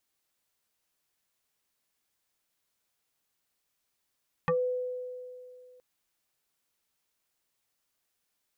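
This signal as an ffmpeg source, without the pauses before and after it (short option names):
-f lavfi -i "aevalsrc='0.075*pow(10,-3*t/2.53)*sin(2*PI*501*t+2.5*pow(10,-3*t/0.13)*sin(2*PI*1.33*501*t))':d=1.32:s=44100"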